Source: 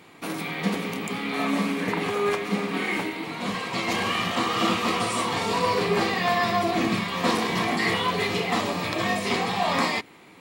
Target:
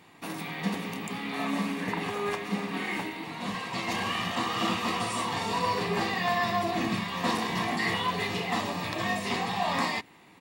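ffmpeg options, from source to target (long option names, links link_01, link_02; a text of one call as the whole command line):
ffmpeg -i in.wav -af "aecho=1:1:1.1:0.3,volume=-5dB" out.wav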